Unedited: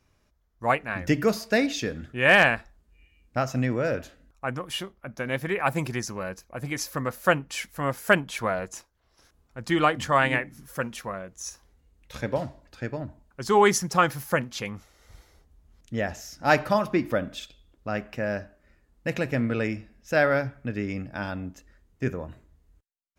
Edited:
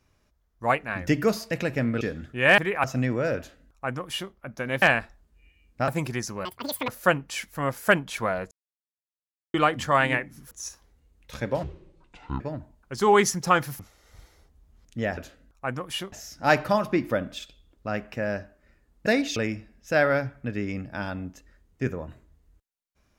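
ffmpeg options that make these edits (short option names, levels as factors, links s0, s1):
-filter_complex "[0:a]asplit=19[s0][s1][s2][s3][s4][s5][s6][s7][s8][s9][s10][s11][s12][s13][s14][s15][s16][s17][s18];[s0]atrim=end=1.512[s19];[s1]atrim=start=19.068:end=19.572[s20];[s2]atrim=start=1.808:end=2.382[s21];[s3]atrim=start=5.418:end=5.682[s22];[s4]atrim=start=3.438:end=5.422[s23];[s5]atrim=start=2.378:end=3.442[s24];[s6]atrim=start=5.678:end=6.254[s25];[s7]atrim=start=6.25:end=7.09,asetpts=PTS-STARTPTS,asetrate=85995,aresample=44100[s26];[s8]atrim=start=7.086:end=8.72,asetpts=PTS-STARTPTS,afade=t=out:st=1.63:d=0.004:c=hsin[s27];[s9]atrim=start=8.72:end=9.75,asetpts=PTS-STARTPTS,volume=0[s28];[s10]atrim=start=9.75:end=10.722,asetpts=PTS-STARTPTS,afade=t=in:d=0.004:c=hsin[s29];[s11]atrim=start=11.318:end=12.444[s30];[s12]atrim=start=12.44:end=12.88,asetpts=PTS-STARTPTS,asetrate=25137,aresample=44100,atrim=end_sample=34042,asetpts=PTS-STARTPTS[s31];[s13]atrim=start=12.876:end=14.272[s32];[s14]atrim=start=14.748:end=16.132[s33];[s15]atrim=start=3.968:end=4.922[s34];[s16]atrim=start=16.128:end=19.072[s35];[s17]atrim=start=1.508:end=1.812[s36];[s18]atrim=start=19.568[s37];[s19][s20]acrossfade=d=0.004:c1=hsin:c2=hsin[s38];[s38][s21]acrossfade=d=0.004:c1=hsin:c2=hsin[s39];[s39][s22]acrossfade=d=0.004:c1=hsin:c2=hsin[s40];[s40][s23]acrossfade=d=0.004:c1=hsin:c2=hsin[s41];[s41][s24]acrossfade=d=0.004:c1=hsin:c2=hsin[s42];[s42][s25]acrossfade=d=0.004:c1=hsin:c2=hsin[s43];[s43][s26]acrossfade=d=0.004:c1=hsin:c2=hsin[s44];[s27][s28][s29]concat=n=3:v=0:a=1[s45];[s44][s45]acrossfade=d=0.004:c1=hsin:c2=hsin[s46];[s46][s30]acrossfade=d=0.004:c1=hsin:c2=hsin[s47];[s47][s31]acrossfade=d=0.004:c1=hsin:c2=hsin[s48];[s48][s32]acrossfade=d=0.004:c1=hsin:c2=hsin[s49];[s49][s33]acrossfade=d=0.004:c1=hsin:c2=hsin[s50];[s50][s34]acrossfade=d=0.004:c1=hsin:c2=hsin[s51];[s51][s35]acrossfade=d=0.004:c1=hsin:c2=hsin[s52];[s52][s36]acrossfade=d=0.004:c1=hsin:c2=hsin[s53];[s53][s37]acrossfade=d=0.004:c1=hsin:c2=hsin"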